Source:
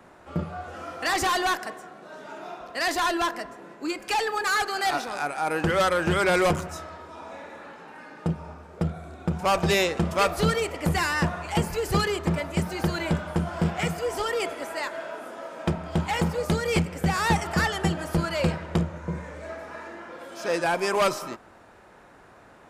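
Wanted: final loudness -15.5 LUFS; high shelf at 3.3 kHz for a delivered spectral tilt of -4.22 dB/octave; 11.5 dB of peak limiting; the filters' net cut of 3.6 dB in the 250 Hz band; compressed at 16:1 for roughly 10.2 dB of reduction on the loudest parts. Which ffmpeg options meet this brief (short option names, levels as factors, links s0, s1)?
-af "equalizer=f=250:t=o:g=-7,highshelf=f=3300:g=8,acompressor=threshold=0.0447:ratio=16,volume=10.6,alimiter=limit=0.562:level=0:latency=1"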